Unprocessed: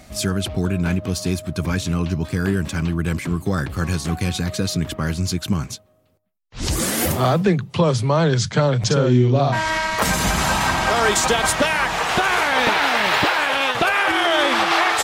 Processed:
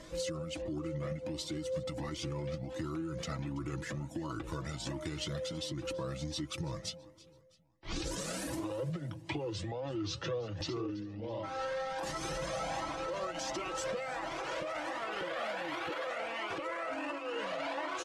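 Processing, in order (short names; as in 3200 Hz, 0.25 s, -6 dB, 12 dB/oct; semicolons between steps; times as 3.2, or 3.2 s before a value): wide varispeed 0.833×; LPF 9400 Hz 12 dB/oct; low shelf 150 Hz -7 dB; comb 6.1 ms, depth 40%; small resonant body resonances 320/530 Hz, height 12 dB, ringing for 45 ms; limiter -14 dBFS, peak gain reduction 15.5 dB; compressor 6:1, threshold -29 dBFS, peak gain reduction 11 dB; feedback echo 0.33 s, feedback 43%, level -20 dB; cascading flanger rising 1.4 Hz; gain -1.5 dB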